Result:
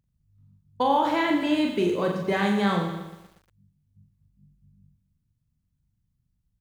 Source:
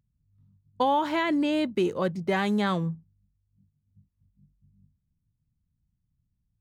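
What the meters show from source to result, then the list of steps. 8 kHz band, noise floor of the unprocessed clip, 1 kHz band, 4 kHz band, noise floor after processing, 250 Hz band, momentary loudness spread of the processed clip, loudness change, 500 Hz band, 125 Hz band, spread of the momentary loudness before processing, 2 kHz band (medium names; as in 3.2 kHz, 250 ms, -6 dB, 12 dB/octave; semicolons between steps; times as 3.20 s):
no reading, -78 dBFS, +2.5 dB, +2.5 dB, -75 dBFS, +2.0 dB, 8 LU, +2.0 dB, +2.0 dB, +1.0 dB, 5 LU, +2.5 dB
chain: reverse bouncing-ball echo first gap 40 ms, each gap 1.2×, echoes 5; bit-crushed delay 118 ms, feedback 55%, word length 8-bit, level -12 dB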